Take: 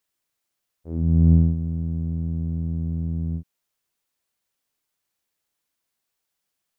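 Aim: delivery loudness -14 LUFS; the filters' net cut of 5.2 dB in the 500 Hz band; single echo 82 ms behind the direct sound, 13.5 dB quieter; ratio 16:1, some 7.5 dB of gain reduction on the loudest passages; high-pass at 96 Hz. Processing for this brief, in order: high-pass 96 Hz; peaking EQ 500 Hz -8 dB; compression 16:1, threshold -20 dBFS; delay 82 ms -13.5 dB; trim +16 dB

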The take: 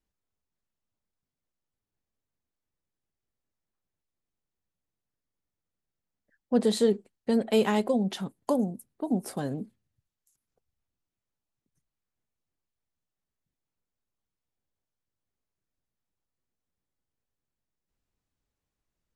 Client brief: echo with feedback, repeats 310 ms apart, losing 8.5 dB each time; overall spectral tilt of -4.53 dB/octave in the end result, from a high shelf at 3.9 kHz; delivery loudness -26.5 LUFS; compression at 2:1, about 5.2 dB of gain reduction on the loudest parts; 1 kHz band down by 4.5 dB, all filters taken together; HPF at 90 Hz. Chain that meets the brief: high-pass 90 Hz; peaking EQ 1 kHz -6.5 dB; treble shelf 3.9 kHz +8.5 dB; compression 2:1, threshold -28 dBFS; feedback delay 310 ms, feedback 38%, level -8.5 dB; trim +5 dB

